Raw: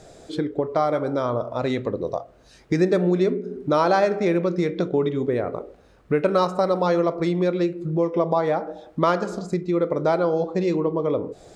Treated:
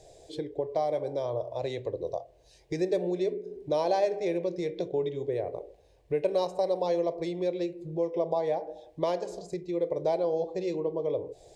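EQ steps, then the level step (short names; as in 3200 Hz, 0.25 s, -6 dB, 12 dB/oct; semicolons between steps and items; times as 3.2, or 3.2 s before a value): fixed phaser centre 550 Hz, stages 4; -5.5 dB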